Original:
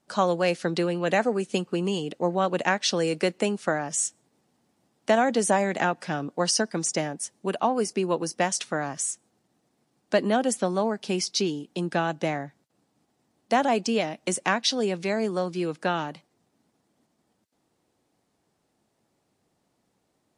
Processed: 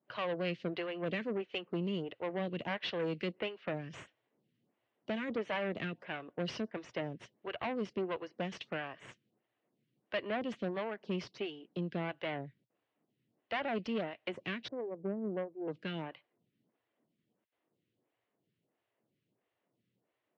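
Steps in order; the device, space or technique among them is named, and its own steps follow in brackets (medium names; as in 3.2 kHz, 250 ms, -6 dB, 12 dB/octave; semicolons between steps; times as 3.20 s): 14.68–15.68 s: inverse Chebyshev low-pass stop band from 4.1 kHz, stop band 80 dB; vibe pedal into a guitar amplifier (lamp-driven phase shifter 1.5 Hz; valve stage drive 26 dB, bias 0.65; cabinet simulation 110–3500 Hz, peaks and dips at 120 Hz +7 dB, 260 Hz -3 dB, 820 Hz -7 dB, 1.3 kHz -3 dB, 2 kHz +3 dB, 2.9 kHz +5 dB); trim -3 dB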